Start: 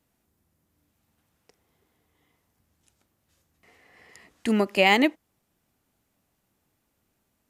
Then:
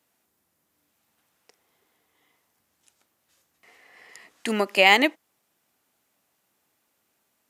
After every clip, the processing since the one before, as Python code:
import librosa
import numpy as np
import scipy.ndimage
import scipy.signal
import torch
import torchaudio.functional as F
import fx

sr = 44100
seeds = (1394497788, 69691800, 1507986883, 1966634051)

y = fx.highpass(x, sr, hz=630.0, slope=6)
y = y * 10.0 ** (4.5 / 20.0)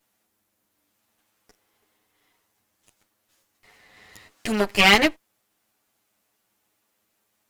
y = fx.lower_of_two(x, sr, delay_ms=9.5)
y = y * 10.0 ** (1.5 / 20.0)